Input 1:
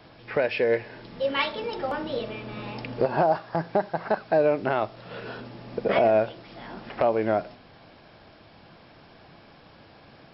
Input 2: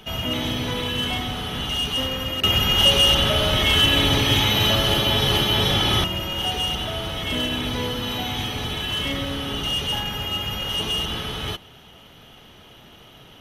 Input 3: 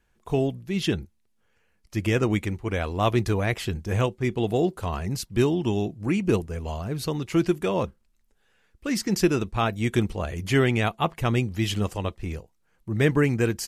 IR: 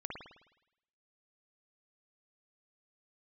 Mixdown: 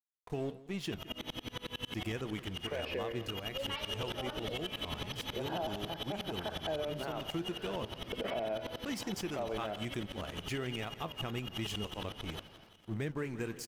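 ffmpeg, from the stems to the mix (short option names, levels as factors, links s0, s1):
-filter_complex "[0:a]adelay=2350,volume=0.251,asplit=2[s0][s1];[s1]volume=0.447[s2];[1:a]aeval=exprs='sgn(val(0))*max(abs(val(0))-0.00237,0)':c=same,aeval=exprs='val(0)*pow(10,-33*if(lt(mod(-11*n/s,1),2*abs(-11)/1000),1-mod(-11*n/s,1)/(2*abs(-11)/1000),(mod(-11*n/s,1)-2*abs(-11)/1000)/(1-2*abs(-11)/1000))/20)':c=same,adelay=850,volume=0.447,asplit=2[s3][s4];[s4]volume=0.188[s5];[2:a]aeval=exprs='sgn(val(0))*max(abs(val(0))-0.0112,0)':c=same,flanger=delay=6:depth=8:regen=76:speed=1.3:shape=triangular,volume=0.668,asplit=2[s6][s7];[s7]volume=0.0841[s8];[s3][s6]amix=inputs=2:normalize=0,alimiter=limit=0.0794:level=0:latency=1:release=329,volume=1[s9];[3:a]atrim=start_sample=2205[s10];[s2][s10]afir=irnorm=-1:irlink=0[s11];[s5][s8]amix=inputs=2:normalize=0,aecho=0:1:168|336|504|672|840|1008|1176|1344:1|0.56|0.314|0.176|0.0983|0.0551|0.0308|0.0173[s12];[s0][s9][s11][s12]amix=inputs=4:normalize=0,equalizer=f=90:w=1.3:g=-3.5,alimiter=level_in=1.5:limit=0.0631:level=0:latency=1:release=190,volume=0.668"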